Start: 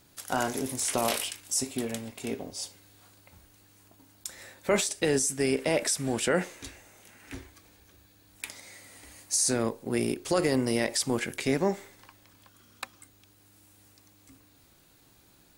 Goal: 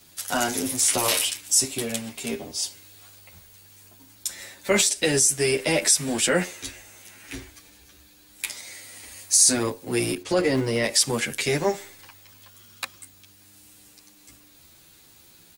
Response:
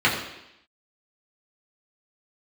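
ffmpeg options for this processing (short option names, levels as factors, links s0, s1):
-filter_complex "[0:a]asettb=1/sr,asplit=3[s0][s1][s2];[s0]atrim=end=10.224[s3];[s1]atrim=start=10.22:end=10.84,asetpts=PTS-STARTPTS,afade=t=in:d=0.004:c=qsin,afade=t=out:st=0.616:d=0.004:c=qsin,aemphasis=mode=reproduction:type=75fm[s4];[s2]atrim=start=10.836[s5];[s3][s4]acrossfade=d=0.004:c1=hsin:c2=qsin[s6];[s6][s5]acrossfade=d=0.004:c1=qsin:c2=hsin,acrossover=split=200|2000[s7][s8][s9];[s7]acrusher=bits=2:mode=log:mix=0:aa=0.000001[s10];[s9]acontrast=79[s11];[s10][s8][s11]amix=inputs=3:normalize=0,asplit=2[s12][s13];[s13]adelay=9.4,afreqshift=0.33[s14];[s12][s14]amix=inputs=2:normalize=1,volume=1.88"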